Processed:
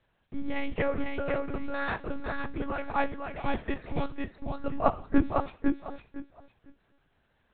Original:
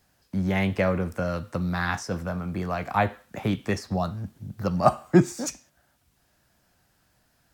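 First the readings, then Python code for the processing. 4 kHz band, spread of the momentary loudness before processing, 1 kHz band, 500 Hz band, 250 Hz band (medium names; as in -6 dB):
-7.0 dB, 11 LU, -4.0 dB, -5.0 dB, -5.0 dB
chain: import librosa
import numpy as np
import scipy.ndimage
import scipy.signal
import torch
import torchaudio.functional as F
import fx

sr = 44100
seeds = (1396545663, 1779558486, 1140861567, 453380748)

y = fx.echo_feedback(x, sr, ms=505, feedback_pct=20, wet_db=-3.5)
y = fx.lpc_monotone(y, sr, seeds[0], pitch_hz=280.0, order=10)
y = y * 10.0 ** (-4.5 / 20.0)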